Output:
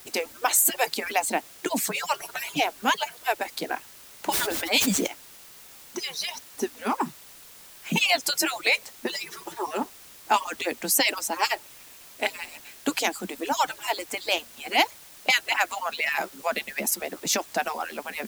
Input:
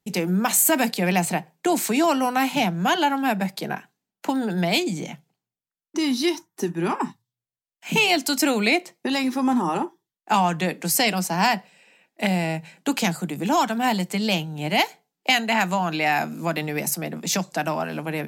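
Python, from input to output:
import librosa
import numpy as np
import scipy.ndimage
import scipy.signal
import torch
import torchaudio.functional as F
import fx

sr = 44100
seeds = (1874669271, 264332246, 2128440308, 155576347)

y = fx.hpss_only(x, sr, part='percussive')
y = fx.quant_dither(y, sr, seeds[0], bits=8, dither='triangular')
y = fx.sustainer(y, sr, db_per_s=22.0, at=(4.3, 5.06), fade=0.02)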